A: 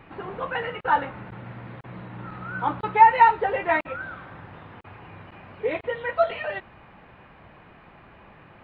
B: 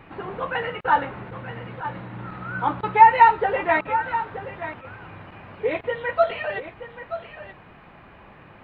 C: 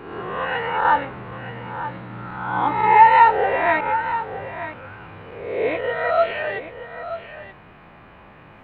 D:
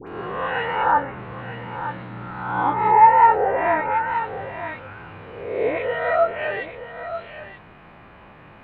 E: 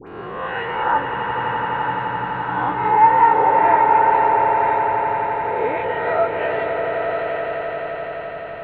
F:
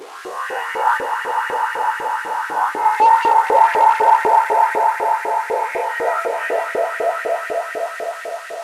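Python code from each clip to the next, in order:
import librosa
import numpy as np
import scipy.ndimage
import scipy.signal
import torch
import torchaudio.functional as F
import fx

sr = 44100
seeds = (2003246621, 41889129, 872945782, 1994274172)

y1 = x + 10.0 ** (-12.0 / 20.0) * np.pad(x, (int(928 * sr / 1000.0), 0))[:len(x)]
y1 = y1 * 10.0 ** (2.0 / 20.0)
y2 = fx.spec_swells(y1, sr, rise_s=0.95)
y2 = y2 * 10.0 ** (-1.0 / 20.0)
y3 = fx.env_lowpass_down(y2, sr, base_hz=1400.0, full_db=-15.0)
y3 = fx.dispersion(y3, sr, late='highs', ms=78.0, hz=1500.0)
y4 = fx.echo_swell(y3, sr, ms=85, loudest=8, wet_db=-10)
y4 = y4 * 10.0 ** (-1.0 / 20.0)
y5 = fx.delta_mod(y4, sr, bps=64000, step_db=-31.0)
y5 = fx.filter_lfo_highpass(y5, sr, shape='saw_up', hz=4.0, low_hz=370.0, high_hz=2100.0, q=2.9)
y5 = y5 * 10.0 ** (-2.0 / 20.0)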